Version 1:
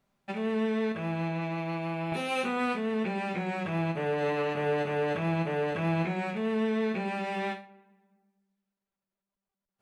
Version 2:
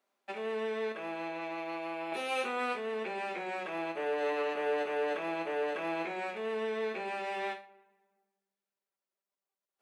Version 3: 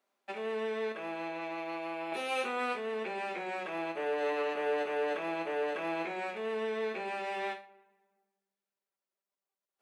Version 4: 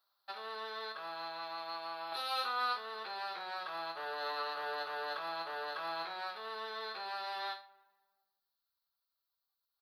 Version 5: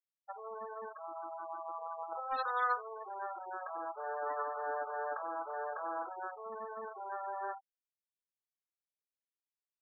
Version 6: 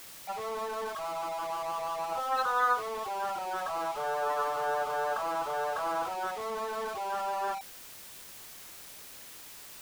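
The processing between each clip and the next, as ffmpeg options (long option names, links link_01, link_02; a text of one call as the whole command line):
ffmpeg -i in.wav -af "highpass=frequency=320:width=0.5412,highpass=frequency=320:width=1.3066,volume=-2.5dB" out.wav
ffmpeg -i in.wav -af anull out.wav
ffmpeg -i in.wav -af "firequalizer=gain_entry='entry(100,0);entry(200,-27);entry(800,-8);entry(1300,0);entry(2300,-19);entry(4200,9);entry(7100,-25);entry(12000,3)':delay=0.05:min_phase=1,volume=5dB" out.wav
ffmpeg -i in.wav -filter_complex "[0:a]adynamicsmooth=sensitivity=2.5:basefreq=770,asplit=2[link_01][link_02];[link_02]adelay=49,volume=-11dB[link_03];[link_01][link_03]amix=inputs=2:normalize=0,afftfilt=real='re*gte(hypot(re,im),0.0112)':imag='im*gte(hypot(re,im),0.0112)':win_size=1024:overlap=0.75,volume=4.5dB" out.wav
ffmpeg -i in.wav -af "aeval=exprs='val(0)+0.5*0.00944*sgn(val(0))':channel_layout=same,volume=4.5dB" out.wav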